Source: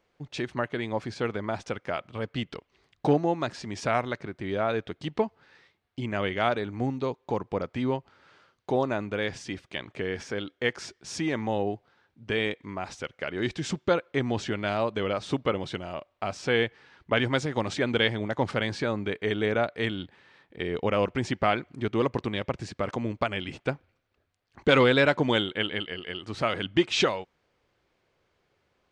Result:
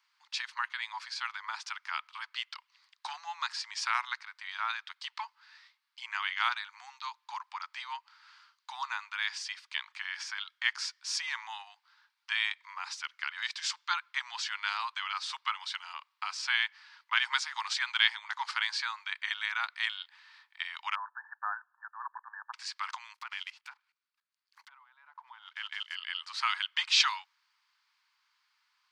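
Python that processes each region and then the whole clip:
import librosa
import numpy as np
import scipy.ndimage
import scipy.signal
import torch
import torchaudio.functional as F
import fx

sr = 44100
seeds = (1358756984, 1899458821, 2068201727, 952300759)

y = fx.chain(x, sr, fx.brickwall_bandpass(low_hz=230.0, high_hz=1800.0),
    fx.peak_eq(hz=1200.0, db=-6.5, octaves=0.67), at=(20.95, 22.53))
y = fx.chain(y, sr, fx.block_float(bits=5),
    fx.env_lowpass_down(base_hz=380.0, full_db=-17.5),
    fx.level_steps(step_db=18), at=(23.14, 25.95))
y = scipy.signal.sosfilt(scipy.signal.butter(12, 910.0, 'highpass', fs=sr, output='sos'), y)
y = fx.peak_eq(y, sr, hz=4700.0, db=8.5, octaves=0.5)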